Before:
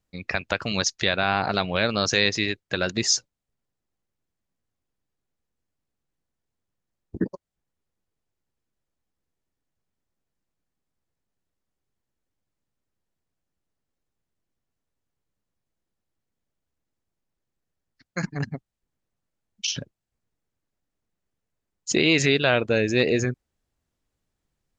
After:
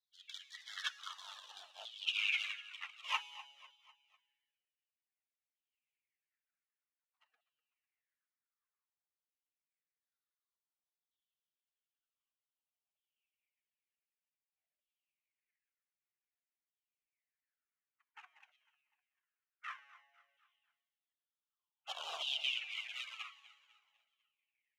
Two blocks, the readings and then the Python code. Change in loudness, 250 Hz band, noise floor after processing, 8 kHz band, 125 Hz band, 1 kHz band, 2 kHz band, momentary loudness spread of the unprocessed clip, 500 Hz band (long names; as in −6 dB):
−16.5 dB, below −40 dB, below −85 dBFS, −27.5 dB, below −40 dB, −18.5 dB, −16.0 dB, 13 LU, −37.5 dB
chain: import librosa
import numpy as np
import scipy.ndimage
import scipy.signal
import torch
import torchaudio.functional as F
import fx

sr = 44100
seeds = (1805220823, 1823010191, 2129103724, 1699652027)

p1 = np.diff(x, prepend=0.0)
p2 = fx.rider(p1, sr, range_db=4, speed_s=2.0)
p3 = p1 + (p2 * 10.0 ** (-1.0 / 20.0))
p4 = fx.sample_hold(p3, sr, seeds[0], rate_hz=4500.0, jitter_pct=20)
p5 = fx.filter_lfo_bandpass(p4, sr, shape='saw_down', hz=0.1, low_hz=410.0, high_hz=2900.0, q=4.9)
p6 = fx.comb_fb(p5, sr, f0_hz=140.0, decay_s=1.4, harmonics='all', damping=0.0, mix_pct=70)
p7 = fx.spec_gate(p6, sr, threshold_db=-20, keep='weak')
p8 = fx.tremolo_random(p7, sr, seeds[1], hz=3.5, depth_pct=55)
p9 = fx.filter_lfo_highpass(p8, sr, shape='saw_down', hz=0.54, low_hz=590.0, high_hz=3500.0, q=4.6)
p10 = fx.peak_eq(p9, sr, hz=2700.0, db=12.0, octaves=2.3)
p11 = fx.notch(p10, sr, hz=970.0, q=25.0)
p12 = fx.echo_feedback(p11, sr, ms=249, feedback_pct=46, wet_db=-17.5)
p13 = fx.comb_cascade(p12, sr, direction='falling', hz=1.8)
y = p13 * 10.0 ** (13.0 / 20.0)